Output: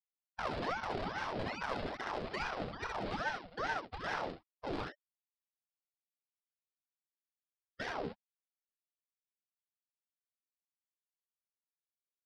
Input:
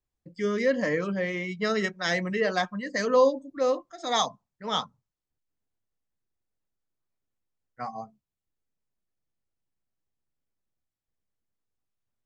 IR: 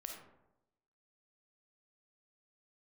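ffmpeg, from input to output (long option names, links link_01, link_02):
-filter_complex "[0:a]highpass=600,agate=range=-60dB:threshold=-48dB:ratio=16:detection=peak,lowpass=frequency=6100:width=0.5412,lowpass=frequency=6100:width=1.3066,afftfilt=real='re*gte(hypot(re,im),0.0141)':imag='im*gte(hypot(re,im),0.0141)':win_size=1024:overlap=0.75,afftdn=noise_reduction=36:noise_floor=-56,alimiter=limit=-21dB:level=0:latency=1:release=12,acompressor=threshold=-39dB:ratio=6,aresample=16000,acrusher=samples=10:mix=1:aa=0.000001:lfo=1:lforange=16:lforate=2.4,aresample=44100,asoftclip=type=tanh:threshold=-34.5dB,asetrate=26990,aresample=44100,atempo=1.63392,asplit=2[link_01][link_02];[link_02]aecho=0:1:28|65|78:0.447|0.596|0.501[link_03];[link_01][link_03]amix=inputs=2:normalize=0,aeval=exprs='val(0)*sin(2*PI*770*n/s+770*0.6/2.4*sin(2*PI*2.4*n/s))':channel_layout=same,volume=6dB"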